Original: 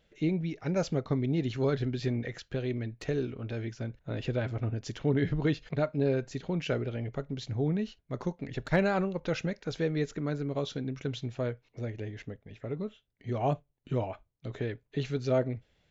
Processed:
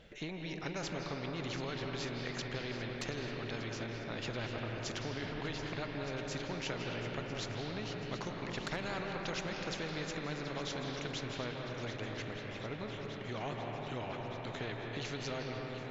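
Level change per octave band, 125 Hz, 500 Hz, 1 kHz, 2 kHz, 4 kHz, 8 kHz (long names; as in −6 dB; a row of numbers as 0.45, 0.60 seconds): −10.0 dB, −8.5 dB, −2.5 dB, −0.5 dB, +3.0 dB, can't be measured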